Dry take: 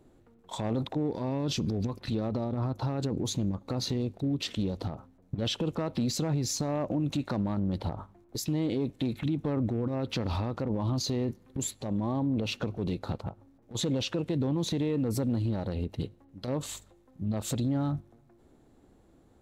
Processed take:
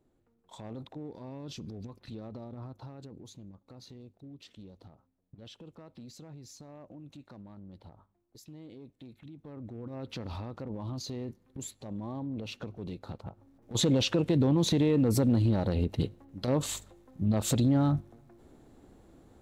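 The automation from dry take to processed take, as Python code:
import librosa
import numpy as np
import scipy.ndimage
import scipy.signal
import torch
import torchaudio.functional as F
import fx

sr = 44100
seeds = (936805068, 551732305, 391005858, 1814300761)

y = fx.gain(x, sr, db=fx.line((2.57, -12.0), (3.36, -19.0), (9.34, -19.0), (10.02, -8.0), (13.16, -8.0), (13.76, 4.0)))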